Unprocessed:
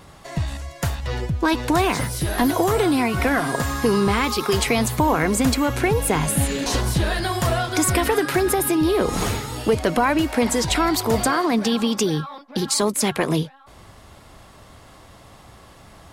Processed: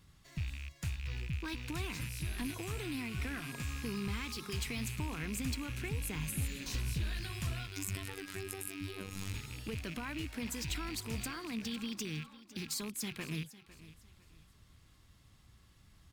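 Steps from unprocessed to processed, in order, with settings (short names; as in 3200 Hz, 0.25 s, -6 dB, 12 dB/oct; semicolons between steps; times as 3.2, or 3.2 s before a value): rattling part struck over -30 dBFS, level -17 dBFS; passive tone stack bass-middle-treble 6-0-2; overloaded stage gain 28.5 dB; 7.67–9.34 robotiser 96.6 Hz; feedback echo 0.504 s, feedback 31%, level -17 dB; decimation joined by straight lines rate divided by 2×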